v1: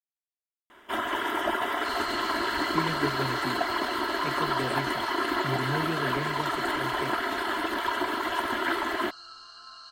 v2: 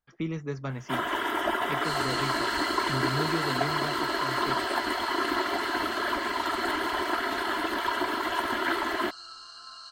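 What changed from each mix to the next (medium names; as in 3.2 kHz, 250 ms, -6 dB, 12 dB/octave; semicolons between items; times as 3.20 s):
speech: entry -2.55 s; second sound: remove distance through air 69 m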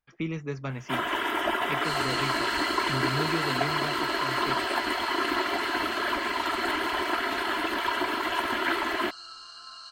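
master: add peaking EQ 2.5 kHz +7 dB 0.43 oct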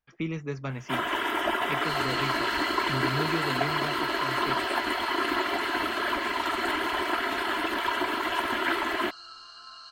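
second sound: add distance through air 72 m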